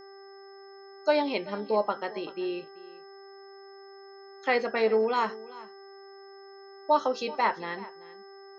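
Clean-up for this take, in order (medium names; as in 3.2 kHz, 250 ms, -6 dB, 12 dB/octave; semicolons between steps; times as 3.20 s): de-hum 392.5 Hz, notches 5; band-stop 5.2 kHz, Q 30; inverse comb 385 ms -19 dB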